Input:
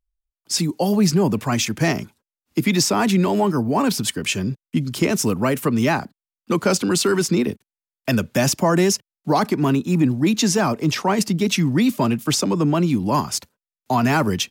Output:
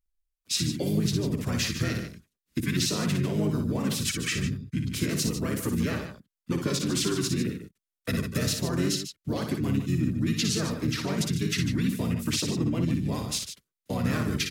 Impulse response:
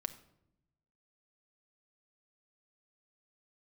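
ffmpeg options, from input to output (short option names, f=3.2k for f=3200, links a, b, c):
-filter_complex "[0:a]acompressor=threshold=-22dB:ratio=2.5,highshelf=f=10k:g=3.5,asplit=3[a][b][c];[b]asetrate=22050,aresample=44100,atempo=2,volume=-10dB[d];[c]asetrate=33038,aresample=44100,atempo=1.33484,volume=0dB[e];[a][d][e]amix=inputs=3:normalize=0,equalizer=f=820:w=1.8:g=-14,aecho=1:1:58.31|148.7:0.501|0.316,volume=-7dB"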